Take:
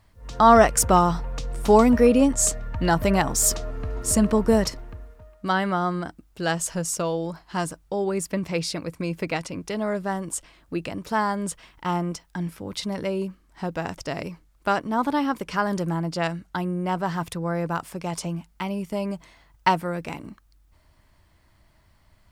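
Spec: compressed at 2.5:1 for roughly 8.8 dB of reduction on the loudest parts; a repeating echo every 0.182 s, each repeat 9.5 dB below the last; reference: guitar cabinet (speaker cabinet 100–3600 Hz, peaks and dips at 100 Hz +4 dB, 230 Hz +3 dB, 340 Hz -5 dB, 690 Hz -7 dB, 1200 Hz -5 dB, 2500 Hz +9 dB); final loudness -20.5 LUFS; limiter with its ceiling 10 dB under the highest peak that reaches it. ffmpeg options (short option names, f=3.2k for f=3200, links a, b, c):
-af "acompressor=threshold=-23dB:ratio=2.5,alimiter=limit=-18.5dB:level=0:latency=1,highpass=100,equalizer=f=100:t=q:w=4:g=4,equalizer=f=230:t=q:w=4:g=3,equalizer=f=340:t=q:w=4:g=-5,equalizer=f=690:t=q:w=4:g=-7,equalizer=f=1.2k:t=q:w=4:g=-5,equalizer=f=2.5k:t=q:w=4:g=9,lowpass=f=3.6k:w=0.5412,lowpass=f=3.6k:w=1.3066,aecho=1:1:182|364|546|728:0.335|0.111|0.0365|0.012,volume=11dB"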